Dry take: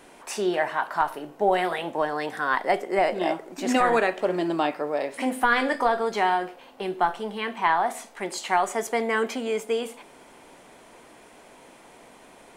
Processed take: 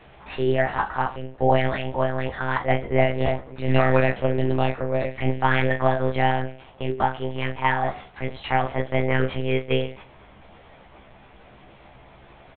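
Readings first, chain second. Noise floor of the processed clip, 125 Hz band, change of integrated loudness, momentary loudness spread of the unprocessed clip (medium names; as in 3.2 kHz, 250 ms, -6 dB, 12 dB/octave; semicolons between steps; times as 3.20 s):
-50 dBFS, +20.0 dB, +1.5 dB, 8 LU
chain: monotone LPC vocoder at 8 kHz 130 Hz; early reflections 15 ms -3.5 dB, 38 ms -11 dB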